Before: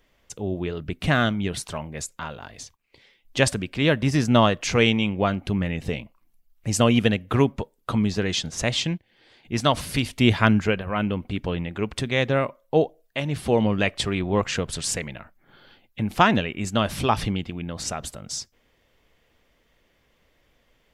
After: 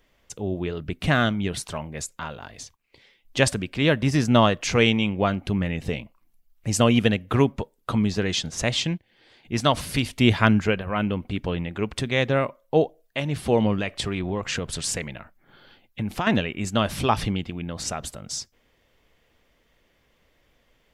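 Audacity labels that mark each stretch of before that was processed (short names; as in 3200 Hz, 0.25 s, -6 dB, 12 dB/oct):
13.760000	16.270000	compressor, threshold -22 dBFS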